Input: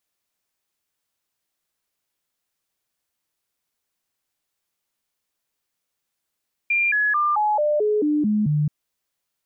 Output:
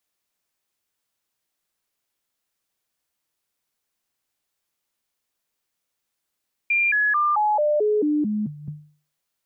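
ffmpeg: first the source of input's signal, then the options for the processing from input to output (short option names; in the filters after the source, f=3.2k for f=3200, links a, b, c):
-f lavfi -i "aevalsrc='0.141*clip(min(mod(t,0.22),0.22-mod(t,0.22))/0.005,0,1)*sin(2*PI*2390*pow(2,-floor(t/0.22)/2)*mod(t,0.22))':d=1.98:s=44100"
-filter_complex "[0:a]bandreject=f=50:t=h:w=6,bandreject=f=100:t=h:w=6,bandreject=f=150:t=h:w=6,acrossover=split=220|470[a][b][c];[a]acompressor=threshold=-36dB:ratio=6[d];[d][b][c]amix=inputs=3:normalize=0"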